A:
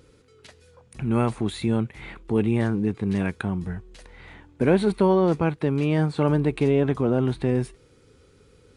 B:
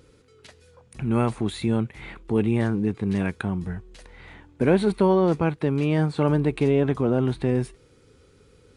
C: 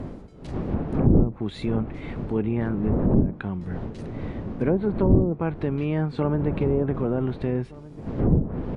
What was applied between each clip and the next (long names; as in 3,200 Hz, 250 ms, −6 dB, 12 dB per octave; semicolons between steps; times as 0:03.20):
no processing that can be heard
wind on the microphone 260 Hz −23 dBFS; slap from a distant wall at 260 metres, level −19 dB; treble cut that deepens with the level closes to 410 Hz, closed at −12 dBFS; level −3 dB